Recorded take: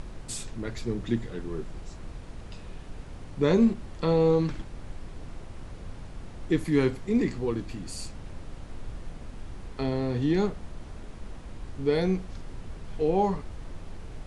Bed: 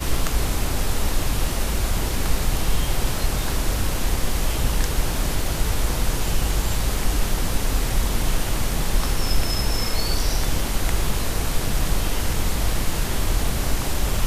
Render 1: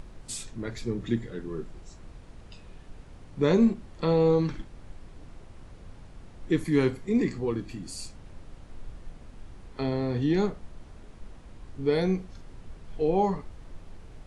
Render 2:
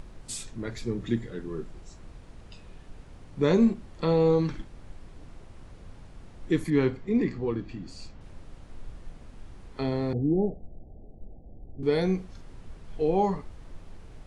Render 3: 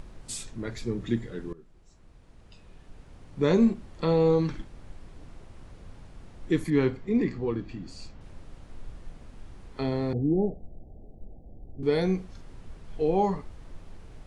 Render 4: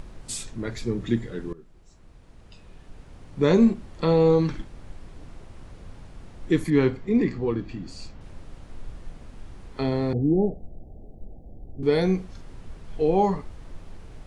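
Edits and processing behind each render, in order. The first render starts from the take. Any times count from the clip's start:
noise print and reduce 6 dB
6.70–8.21 s: distance through air 140 m; 10.13–11.83 s: steep low-pass 800 Hz 96 dB/octave
1.53–3.55 s: fade in, from -18.5 dB
trim +3.5 dB

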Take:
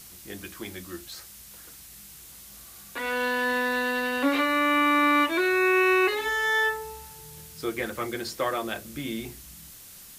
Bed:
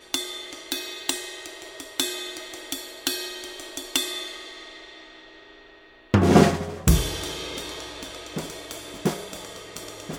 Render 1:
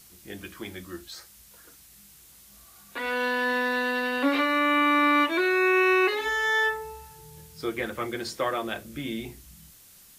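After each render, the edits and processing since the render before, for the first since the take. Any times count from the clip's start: noise print and reduce 6 dB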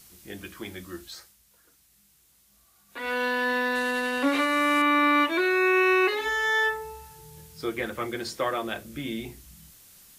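1.13–3.11 s: dip -9.5 dB, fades 0.24 s; 3.75–4.82 s: CVSD coder 64 kbps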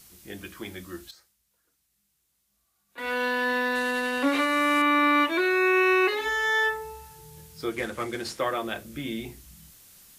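1.11–2.98 s: gain -11.5 dB; 7.72–8.39 s: CVSD coder 64 kbps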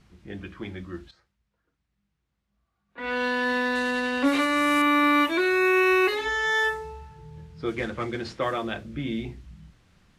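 level-controlled noise filter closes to 2 kHz, open at -18 dBFS; tone controls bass +7 dB, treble +3 dB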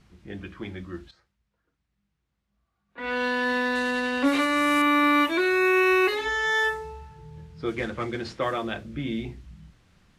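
no audible change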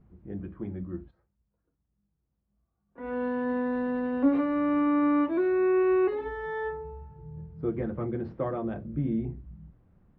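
Bessel low-pass 580 Hz, order 2; dynamic bell 160 Hz, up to +6 dB, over -46 dBFS, Q 1.9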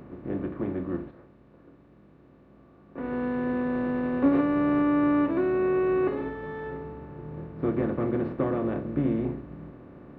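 spectral levelling over time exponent 0.4; upward expansion 1.5:1, over -38 dBFS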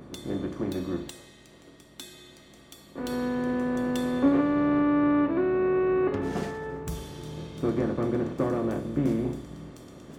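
add bed -17.5 dB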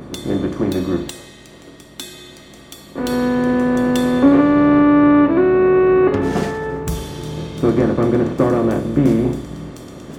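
trim +11.5 dB; peak limiter -3 dBFS, peak gain reduction 1.5 dB

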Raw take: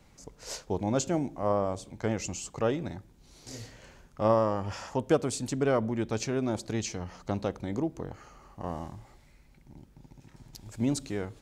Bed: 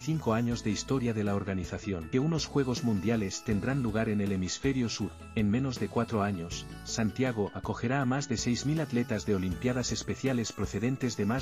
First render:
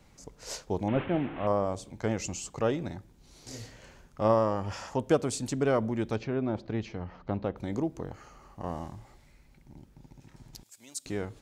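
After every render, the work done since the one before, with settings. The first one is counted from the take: 0.88–1.47 s: one-bit delta coder 16 kbps, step -34 dBFS; 6.16–7.57 s: distance through air 330 m; 10.63–11.06 s: differentiator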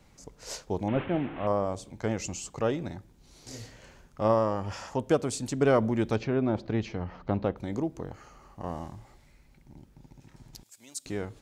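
5.61–7.54 s: gain +3.5 dB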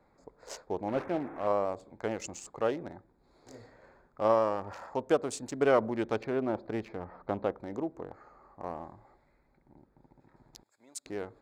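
local Wiener filter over 15 samples; tone controls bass -13 dB, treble -3 dB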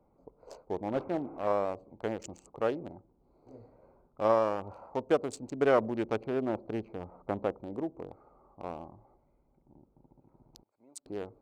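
local Wiener filter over 25 samples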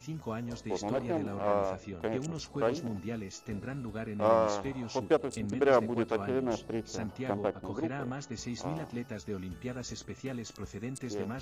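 add bed -9 dB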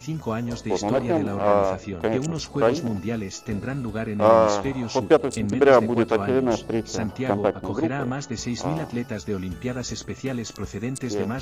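trim +10 dB; peak limiter -3 dBFS, peak gain reduction 1.5 dB

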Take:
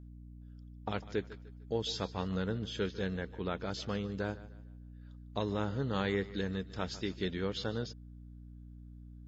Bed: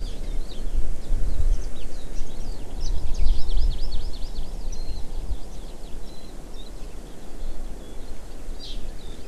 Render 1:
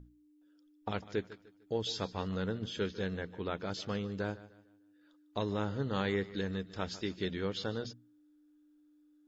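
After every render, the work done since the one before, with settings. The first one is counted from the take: hum notches 60/120/180/240 Hz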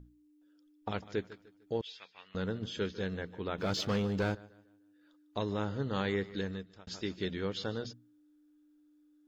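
1.81–2.35 s: band-pass filter 2.4 kHz, Q 3.1; 3.58–4.35 s: waveshaping leveller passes 2; 6.42–6.87 s: fade out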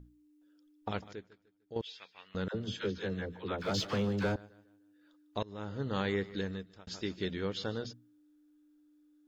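1.13–1.76 s: gain -11 dB; 2.48–4.36 s: phase dispersion lows, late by 65 ms, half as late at 610 Hz; 5.43–5.90 s: fade in, from -22.5 dB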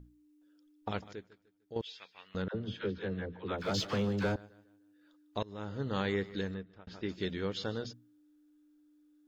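2.42–3.49 s: distance through air 220 m; 6.54–7.09 s: low-pass 2.5 kHz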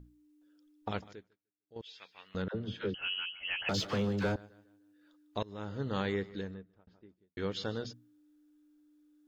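0.98–2.06 s: dip -23.5 dB, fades 0.41 s; 2.94–3.69 s: frequency inversion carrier 3.1 kHz; 5.85–7.37 s: studio fade out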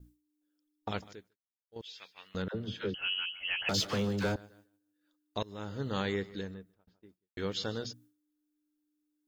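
expander -56 dBFS; treble shelf 5.2 kHz +11 dB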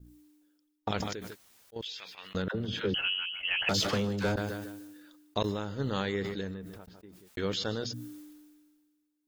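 transient shaper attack +5 dB, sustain -5 dB; decay stretcher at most 35 dB/s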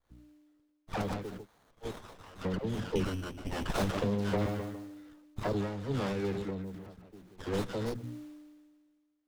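phase dispersion lows, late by 106 ms, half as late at 1.2 kHz; sliding maximum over 17 samples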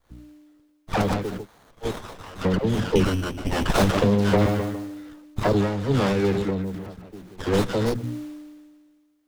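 trim +11.5 dB

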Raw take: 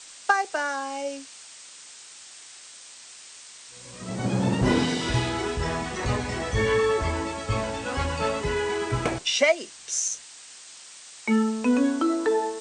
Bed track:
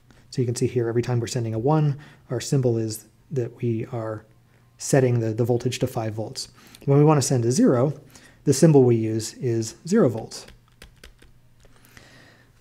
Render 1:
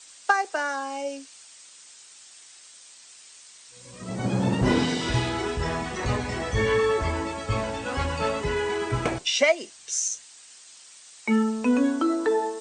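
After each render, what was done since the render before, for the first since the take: noise reduction 6 dB, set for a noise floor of -46 dBFS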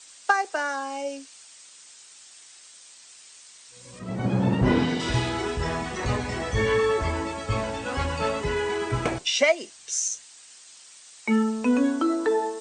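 3.99–5.00 s: tone controls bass +2 dB, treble -10 dB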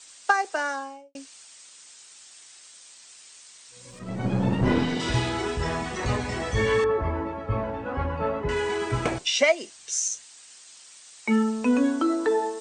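0.67–1.15 s: studio fade out; 3.90–4.96 s: partial rectifier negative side -3 dB; 6.84–8.49 s: low-pass 1.4 kHz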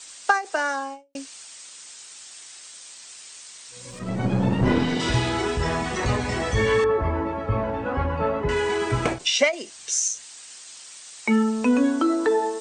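in parallel at 0 dB: compression, threshold -31 dBFS, peak gain reduction 15 dB; on the sum: endings held to a fixed fall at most 210 dB/s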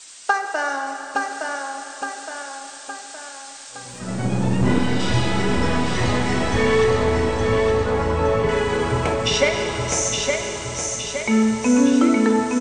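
feedback delay 866 ms, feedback 53%, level -4 dB; Schroeder reverb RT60 3.6 s, combs from 25 ms, DRR 4.5 dB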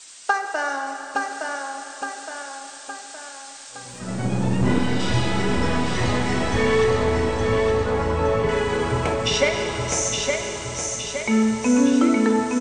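trim -1.5 dB

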